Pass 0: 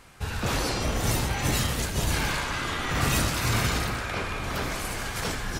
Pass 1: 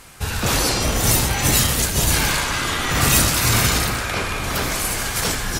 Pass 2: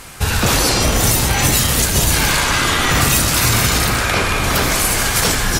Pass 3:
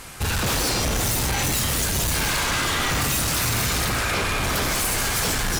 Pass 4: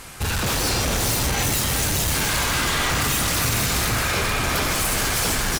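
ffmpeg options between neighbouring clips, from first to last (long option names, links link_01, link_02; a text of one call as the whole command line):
ffmpeg -i in.wav -af "aemphasis=mode=production:type=cd,volume=6.5dB" out.wav
ffmpeg -i in.wav -af "acompressor=threshold=-19dB:ratio=6,volume=8dB" out.wav
ffmpeg -i in.wav -af "volume=17dB,asoftclip=hard,volume=-17dB,volume=-3.5dB" out.wav
ffmpeg -i in.wav -af "aecho=1:1:417:0.531" out.wav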